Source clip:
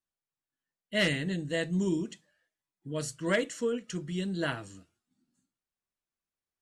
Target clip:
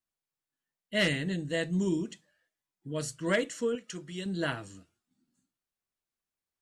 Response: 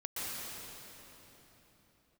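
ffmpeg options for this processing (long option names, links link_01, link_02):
-filter_complex "[0:a]asettb=1/sr,asplit=3[link_01][link_02][link_03];[link_01]atrim=end=3.754[link_04];[link_02]atrim=start=3.75:end=4.26,asetpts=PTS-STARTPTS,afade=type=in:duration=0.004:curve=qsin,afade=type=out:start_time=0.506:duration=0.004:curve=qsin,lowshelf=frequency=260:gain=-11[link_05];[link_03]atrim=start=4.256[link_06];[link_04][link_05]acrossfade=duration=0.004:curve1=hsin:curve2=qsin[link_07];[link_07][link_06]acrossfade=duration=0.004:curve1=qsin:curve2=hsin"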